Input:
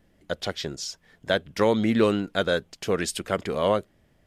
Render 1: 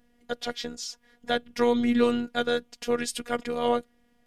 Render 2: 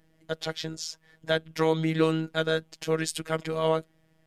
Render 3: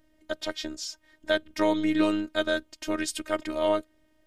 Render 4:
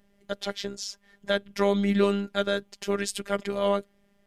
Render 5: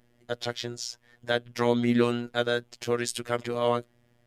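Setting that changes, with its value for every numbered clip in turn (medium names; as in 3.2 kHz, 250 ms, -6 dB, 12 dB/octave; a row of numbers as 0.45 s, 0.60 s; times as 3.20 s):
robot voice, frequency: 240 Hz, 160 Hz, 310 Hz, 200 Hz, 120 Hz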